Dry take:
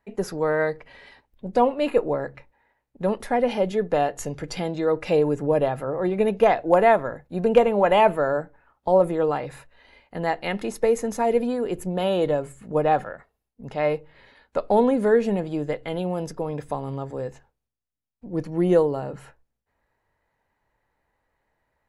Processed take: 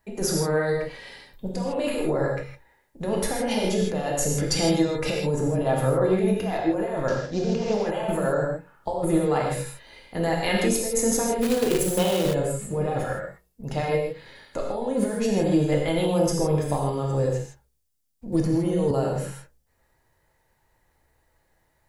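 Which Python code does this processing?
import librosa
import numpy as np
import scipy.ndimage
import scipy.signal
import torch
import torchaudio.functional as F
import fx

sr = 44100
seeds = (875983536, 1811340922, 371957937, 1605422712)

y = fx.cvsd(x, sr, bps=32000, at=(7.08, 7.74))
y = fx.bass_treble(y, sr, bass_db=-1, treble_db=12)
y = fx.over_compress(y, sr, threshold_db=-25.0, ratio=-1.0)
y = fx.low_shelf(y, sr, hz=190.0, db=9.0)
y = fx.hum_notches(y, sr, base_hz=60, count=8)
y = fx.rev_gated(y, sr, seeds[0], gate_ms=180, shape='flat', drr_db=-1.5)
y = fx.quant_companded(y, sr, bits=4, at=(11.41, 12.33), fade=0.02)
y = fx.band_squash(y, sr, depth_pct=100, at=(18.32, 18.91))
y = y * librosa.db_to_amplitude(-3.5)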